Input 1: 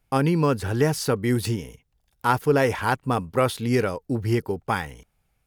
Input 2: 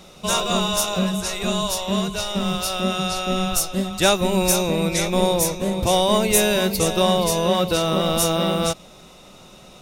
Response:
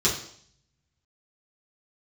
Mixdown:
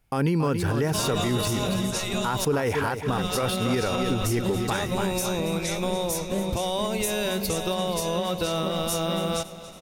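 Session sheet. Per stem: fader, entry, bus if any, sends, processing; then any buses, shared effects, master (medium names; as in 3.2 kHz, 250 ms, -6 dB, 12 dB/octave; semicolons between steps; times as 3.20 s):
+2.0 dB, 0.00 s, no send, echo send -10 dB, none
-2.5 dB, 0.70 s, muted 2.45–3.08 s, no send, echo send -16.5 dB, compression, threshold -20 dBFS, peak gain reduction 8.5 dB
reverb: none
echo: feedback delay 279 ms, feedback 53%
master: peak limiter -16 dBFS, peak gain reduction 11.5 dB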